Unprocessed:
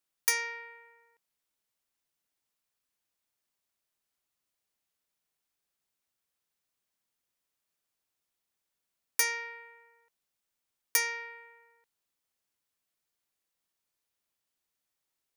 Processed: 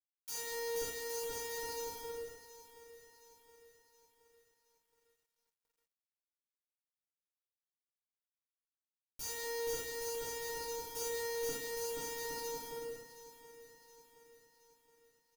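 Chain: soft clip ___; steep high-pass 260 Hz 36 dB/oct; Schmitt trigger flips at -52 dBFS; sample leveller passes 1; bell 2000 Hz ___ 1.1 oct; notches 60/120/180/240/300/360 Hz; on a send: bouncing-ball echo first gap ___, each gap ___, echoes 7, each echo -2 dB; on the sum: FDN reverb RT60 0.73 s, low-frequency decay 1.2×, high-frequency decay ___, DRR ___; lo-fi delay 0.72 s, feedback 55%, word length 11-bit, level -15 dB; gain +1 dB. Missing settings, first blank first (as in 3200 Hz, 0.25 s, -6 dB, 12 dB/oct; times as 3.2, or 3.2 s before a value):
-29 dBFS, -13.5 dB, 0.48 s, 0.7×, 0.95×, -6.5 dB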